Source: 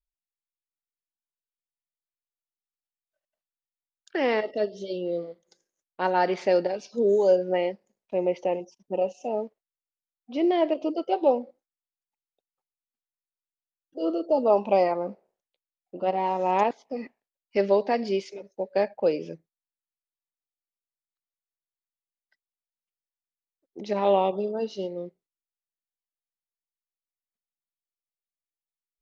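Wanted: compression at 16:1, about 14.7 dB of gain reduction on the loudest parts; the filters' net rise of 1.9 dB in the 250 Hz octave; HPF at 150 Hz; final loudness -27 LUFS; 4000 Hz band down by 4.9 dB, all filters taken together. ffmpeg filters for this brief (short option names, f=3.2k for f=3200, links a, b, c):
-af "highpass=150,equalizer=f=250:t=o:g=3.5,equalizer=f=4k:t=o:g=-7.5,acompressor=threshold=-30dB:ratio=16,volume=9.5dB"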